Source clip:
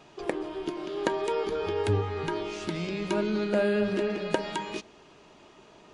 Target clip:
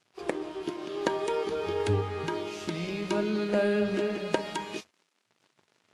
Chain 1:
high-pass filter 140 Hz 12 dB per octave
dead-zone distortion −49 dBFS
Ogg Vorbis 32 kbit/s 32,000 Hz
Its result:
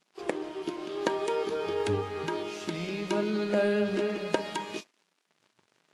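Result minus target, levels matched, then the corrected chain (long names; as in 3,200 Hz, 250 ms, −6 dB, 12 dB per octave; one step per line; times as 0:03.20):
125 Hz band −3.5 dB
high-pass filter 66 Hz 12 dB per octave
dead-zone distortion −49 dBFS
Ogg Vorbis 32 kbit/s 32,000 Hz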